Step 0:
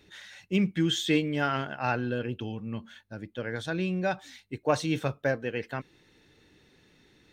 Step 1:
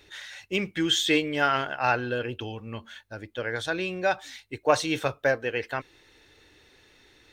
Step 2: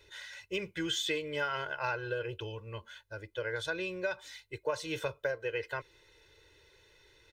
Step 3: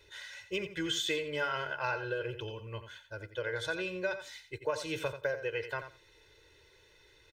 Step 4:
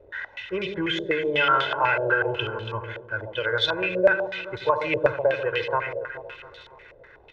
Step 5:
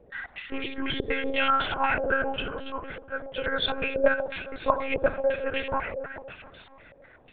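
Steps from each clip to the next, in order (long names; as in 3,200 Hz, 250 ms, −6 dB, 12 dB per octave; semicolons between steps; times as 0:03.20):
parametric band 180 Hz −14.5 dB 1.3 octaves; level +6 dB
comb filter 2 ms, depth 100%; downward compressor 5 to 1, threshold −22 dBFS, peak gain reduction 10 dB; level −8 dB
repeating echo 87 ms, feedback 16%, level −10.5 dB
surface crackle 130 per second −44 dBFS; delay that swaps between a low-pass and a high-pass 141 ms, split 1,000 Hz, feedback 71%, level −7 dB; low-pass on a step sequencer 8.1 Hz 580–3,700 Hz; level +7 dB
one-pitch LPC vocoder at 8 kHz 270 Hz; level −3 dB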